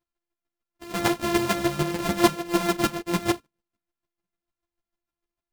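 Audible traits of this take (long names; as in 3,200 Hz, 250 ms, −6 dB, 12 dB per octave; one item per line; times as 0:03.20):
a buzz of ramps at a fixed pitch in blocks of 128 samples
chopped level 6.7 Hz, depth 65%, duty 15%
a shimmering, thickened sound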